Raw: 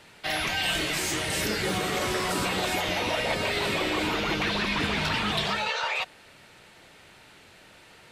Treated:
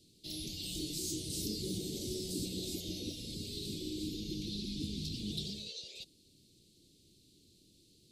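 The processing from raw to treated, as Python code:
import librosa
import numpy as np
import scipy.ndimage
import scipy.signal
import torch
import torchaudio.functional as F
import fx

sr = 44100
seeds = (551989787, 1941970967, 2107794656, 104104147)

y = fx.peak_eq(x, sr, hz=860.0, db=fx.steps((0.0, 10.5), (3.12, -4.5), (5.2, 8.0)), octaves=1.4)
y = scipy.signal.sosfilt(scipy.signal.ellip(3, 1.0, 60, [330.0, 4100.0], 'bandstop', fs=sr, output='sos'), y)
y = y * 10.0 ** (-7.0 / 20.0)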